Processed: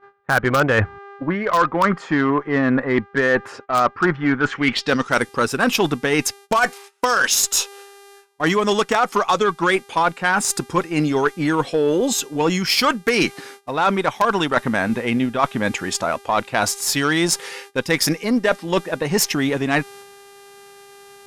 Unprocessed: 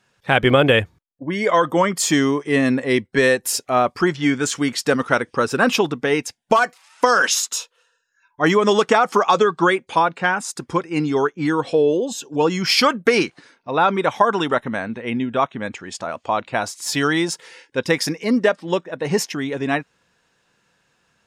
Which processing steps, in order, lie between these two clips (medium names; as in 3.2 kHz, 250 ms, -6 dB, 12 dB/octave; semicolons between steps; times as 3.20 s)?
mains buzz 400 Hz, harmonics 30, -50 dBFS -5 dB/octave; low-pass sweep 1.4 kHz -> 13 kHz, 4.44–5.32 s; in parallel at -10 dB: integer overflow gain 3 dB; on the sum: dynamic bell 480 Hz, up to -3 dB, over -25 dBFS, Q 1.2; Chebyshev shaper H 6 -25 dB, 7 -31 dB, 8 -24 dB, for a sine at -0.5 dBFS; reverse; compression 4:1, threshold -25 dBFS, peak gain reduction 15.5 dB; reverse; gate -48 dBFS, range -18 dB; trim +8.5 dB